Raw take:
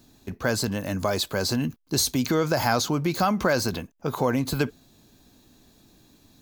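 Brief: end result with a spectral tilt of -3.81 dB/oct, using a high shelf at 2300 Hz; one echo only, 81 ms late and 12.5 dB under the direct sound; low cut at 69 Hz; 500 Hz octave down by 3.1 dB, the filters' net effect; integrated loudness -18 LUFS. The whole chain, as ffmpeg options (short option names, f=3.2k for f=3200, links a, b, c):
-af "highpass=69,equalizer=f=500:t=o:g=-4,highshelf=f=2.3k:g=4,aecho=1:1:81:0.237,volume=6.5dB"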